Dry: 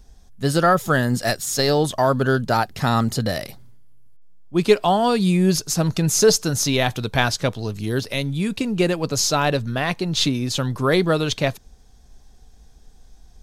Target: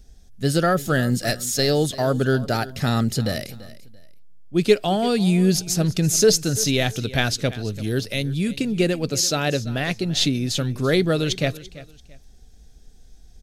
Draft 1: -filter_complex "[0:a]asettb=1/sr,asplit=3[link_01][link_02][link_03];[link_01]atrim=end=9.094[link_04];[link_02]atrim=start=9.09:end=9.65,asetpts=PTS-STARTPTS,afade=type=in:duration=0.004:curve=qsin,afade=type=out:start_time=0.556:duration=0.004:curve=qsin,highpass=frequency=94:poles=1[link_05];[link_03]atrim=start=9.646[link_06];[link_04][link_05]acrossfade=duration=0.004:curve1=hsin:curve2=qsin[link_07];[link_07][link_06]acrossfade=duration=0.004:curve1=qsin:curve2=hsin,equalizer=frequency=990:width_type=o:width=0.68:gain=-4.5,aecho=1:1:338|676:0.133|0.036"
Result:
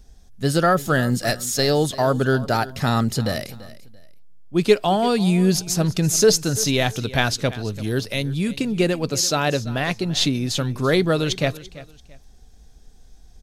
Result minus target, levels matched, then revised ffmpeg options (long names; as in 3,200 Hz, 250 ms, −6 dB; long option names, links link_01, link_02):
1,000 Hz band +3.5 dB
-filter_complex "[0:a]asettb=1/sr,asplit=3[link_01][link_02][link_03];[link_01]atrim=end=9.094[link_04];[link_02]atrim=start=9.09:end=9.65,asetpts=PTS-STARTPTS,afade=type=in:duration=0.004:curve=qsin,afade=type=out:start_time=0.556:duration=0.004:curve=qsin,highpass=frequency=94:poles=1[link_05];[link_03]atrim=start=9.646[link_06];[link_04][link_05]acrossfade=duration=0.004:curve1=hsin:curve2=qsin[link_07];[link_07][link_06]acrossfade=duration=0.004:curve1=qsin:curve2=hsin,equalizer=frequency=990:width_type=o:width=0.68:gain=-13,aecho=1:1:338|676:0.133|0.036"